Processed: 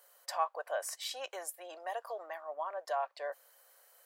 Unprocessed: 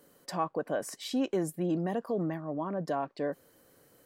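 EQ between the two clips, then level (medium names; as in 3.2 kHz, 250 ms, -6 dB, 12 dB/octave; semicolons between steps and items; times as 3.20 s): steep high-pass 600 Hz 36 dB/octave; treble shelf 10 kHz +4 dB; 0.0 dB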